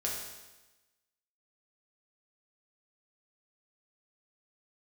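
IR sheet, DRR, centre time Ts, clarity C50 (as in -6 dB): -4.0 dB, 59 ms, 2.0 dB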